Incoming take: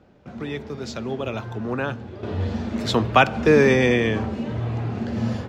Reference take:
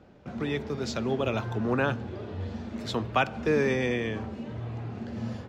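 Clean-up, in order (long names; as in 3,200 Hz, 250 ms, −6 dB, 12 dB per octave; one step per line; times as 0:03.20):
level correction −9.5 dB, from 0:02.23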